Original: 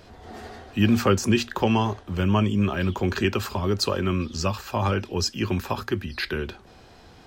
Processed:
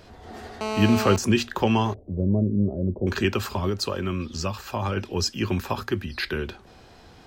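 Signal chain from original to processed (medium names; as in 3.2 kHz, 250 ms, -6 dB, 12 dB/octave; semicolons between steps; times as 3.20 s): 0.61–1.16 s: mobile phone buzz -28 dBFS; 1.94–3.07 s: elliptic low-pass 600 Hz, stop band 80 dB; 3.69–4.97 s: compression 1.5:1, threshold -29 dBFS, peak gain reduction 4 dB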